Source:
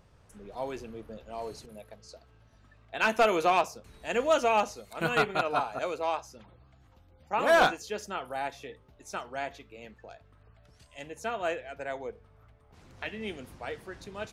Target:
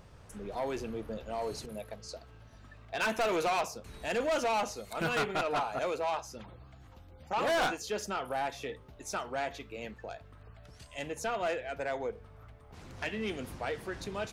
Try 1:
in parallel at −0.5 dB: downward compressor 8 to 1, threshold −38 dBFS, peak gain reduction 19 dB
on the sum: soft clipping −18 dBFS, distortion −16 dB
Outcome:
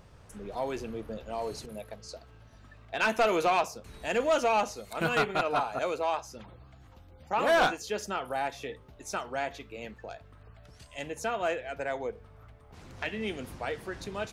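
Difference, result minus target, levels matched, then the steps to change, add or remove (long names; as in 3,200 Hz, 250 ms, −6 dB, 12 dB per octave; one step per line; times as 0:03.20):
soft clipping: distortion −8 dB
change: soft clipping −26 dBFS, distortion −7 dB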